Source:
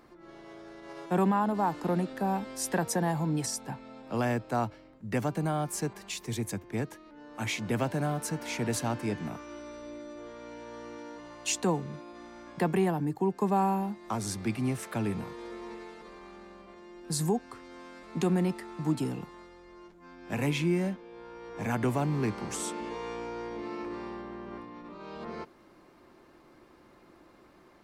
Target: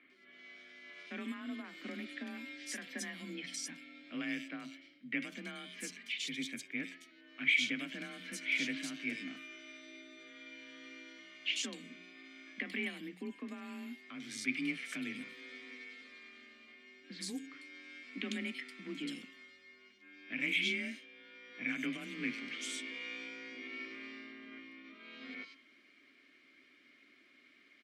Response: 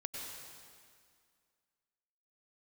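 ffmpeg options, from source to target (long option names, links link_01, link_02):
-filter_complex "[0:a]lowshelf=frequency=480:width_type=q:width=1.5:gain=-8.5,acrossover=split=3100[link_01][link_02];[link_02]adelay=100[link_03];[link_01][link_03]amix=inputs=2:normalize=0,alimiter=limit=-23.5dB:level=0:latency=1:release=183,afreqshift=32,asplit=3[link_04][link_05][link_06];[link_04]bandpass=frequency=270:width_type=q:width=8,volume=0dB[link_07];[link_05]bandpass=frequency=2290:width_type=q:width=8,volume=-6dB[link_08];[link_06]bandpass=frequency=3010:width_type=q:width=8,volume=-9dB[link_09];[link_07][link_08][link_09]amix=inputs=3:normalize=0,tiltshelf=frequency=970:gain=-6.5,bandreject=frequency=90.28:width_type=h:width=4,bandreject=frequency=180.56:width_type=h:width=4,bandreject=frequency=270.84:width_type=h:width=4,bandreject=frequency=361.12:width_type=h:width=4,bandreject=frequency=451.4:width_type=h:width=4,bandreject=frequency=541.68:width_type=h:width=4,bandreject=frequency=631.96:width_type=h:width=4,bandreject=frequency=722.24:width_type=h:width=4,bandreject=frequency=812.52:width_type=h:width=4,bandreject=frequency=902.8:width_type=h:width=4,bandreject=frequency=993.08:width_type=h:width=4,bandreject=frequency=1083.36:width_type=h:width=4,bandreject=frequency=1173.64:width_type=h:width=4,bandreject=frequency=1263.92:width_type=h:width=4,bandreject=frequency=1354.2:width_type=h:width=4,bandreject=frequency=1444.48:width_type=h:width=4,bandreject=frequency=1534.76:width_type=h:width=4,bandreject=frequency=1625.04:width_type=h:width=4,bandreject=frequency=1715.32:width_type=h:width=4,bandreject=frequency=1805.6:width_type=h:width=4,bandreject=frequency=1895.88:width_type=h:width=4,bandreject=frequency=1986.16:width_type=h:width=4,bandreject=frequency=2076.44:width_type=h:width=4,bandreject=frequency=2166.72:width_type=h:width=4,bandreject=frequency=2257:width_type=h:width=4,bandreject=frequency=2347.28:width_type=h:width=4,bandreject=frequency=2437.56:width_type=h:width=4,bandreject=frequency=2527.84:width_type=h:width=4,bandreject=frequency=2618.12:width_type=h:width=4,bandreject=frequency=2708.4:width_type=h:width=4,bandreject=frequency=2798.68:width_type=h:width=4,bandreject=frequency=2888.96:width_type=h:width=4,bandreject=frequency=2979.24:width_type=h:width=4,bandreject=frequency=3069.52:width_type=h:width=4,bandreject=frequency=3159.8:width_type=h:width=4,bandreject=frequency=3250.08:width_type=h:width=4,bandreject=frequency=3340.36:width_type=h:width=4,volume=13dB"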